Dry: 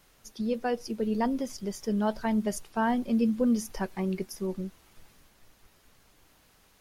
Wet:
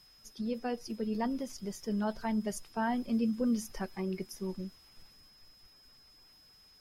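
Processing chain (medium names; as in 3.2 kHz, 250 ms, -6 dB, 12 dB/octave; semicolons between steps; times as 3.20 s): coarse spectral quantiser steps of 15 dB; whistle 5.1 kHz -55 dBFS; peaking EQ 530 Hz -2.5 dB 1.4 oct; trim -4 dB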